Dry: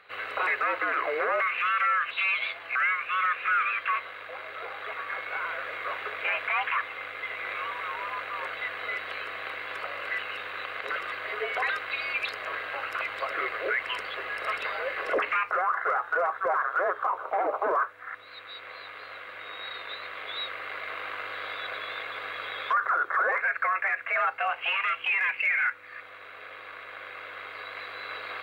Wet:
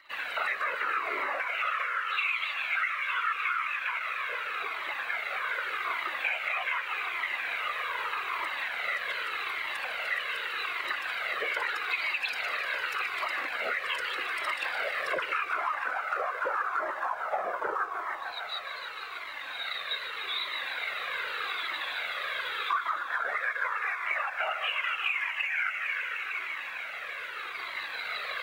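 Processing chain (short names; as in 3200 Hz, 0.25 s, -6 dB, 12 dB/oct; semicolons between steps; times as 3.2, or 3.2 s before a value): whisperiser; tilt +2.5 dB/oct; on a send: thinning echo 0.151 s, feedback 85%, high-pass 280 Hz, level -11 dB; on the sum: compressor, threshold -27 dBFS, peak gain reduction 9.5 dB; in parallel at -4 dB: crossover distortion -49 dBFS; on the sum: cascading flanger falling 0.83 Hz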